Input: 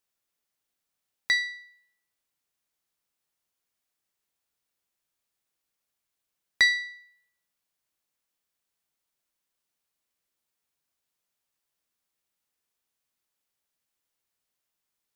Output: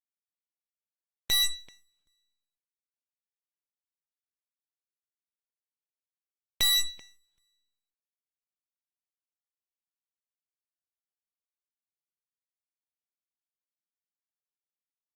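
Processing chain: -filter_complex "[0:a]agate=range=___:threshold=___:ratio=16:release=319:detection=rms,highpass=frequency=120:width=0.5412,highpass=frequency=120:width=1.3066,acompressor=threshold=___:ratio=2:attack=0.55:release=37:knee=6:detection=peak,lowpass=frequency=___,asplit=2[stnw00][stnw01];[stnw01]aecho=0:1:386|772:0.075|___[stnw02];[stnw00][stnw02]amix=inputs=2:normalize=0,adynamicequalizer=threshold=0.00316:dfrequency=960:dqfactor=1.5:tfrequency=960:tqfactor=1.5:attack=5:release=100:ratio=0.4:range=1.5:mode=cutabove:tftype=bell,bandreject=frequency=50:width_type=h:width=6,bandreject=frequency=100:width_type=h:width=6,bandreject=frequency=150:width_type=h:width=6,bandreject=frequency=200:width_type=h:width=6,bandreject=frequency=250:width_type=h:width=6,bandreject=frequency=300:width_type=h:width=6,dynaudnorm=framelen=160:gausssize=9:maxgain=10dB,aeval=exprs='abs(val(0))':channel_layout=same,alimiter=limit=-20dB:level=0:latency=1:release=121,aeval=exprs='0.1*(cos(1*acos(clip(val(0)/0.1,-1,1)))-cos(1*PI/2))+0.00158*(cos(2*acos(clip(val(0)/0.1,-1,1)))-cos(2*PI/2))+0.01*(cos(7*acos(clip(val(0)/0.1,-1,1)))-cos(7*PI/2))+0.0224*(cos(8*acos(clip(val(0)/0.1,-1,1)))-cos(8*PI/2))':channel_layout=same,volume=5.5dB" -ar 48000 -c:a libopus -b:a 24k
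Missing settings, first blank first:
-55dB, -56dB, -24dB, 1.8k, 0.0157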